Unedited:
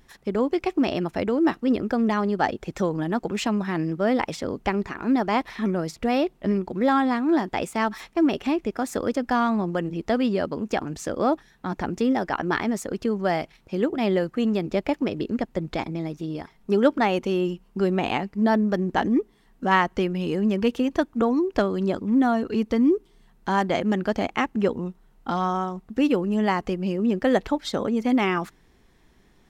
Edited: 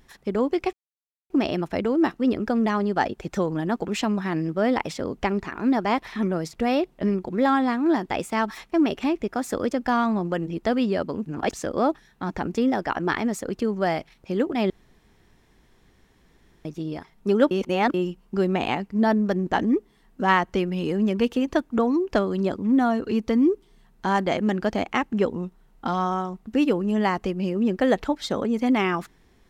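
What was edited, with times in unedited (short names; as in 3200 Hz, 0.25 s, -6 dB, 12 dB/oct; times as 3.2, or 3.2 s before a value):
0.73 insert silence 0.57 s
10.69–10.96 reverse
14.13–16.08 room tone
16.94–17.37 reverse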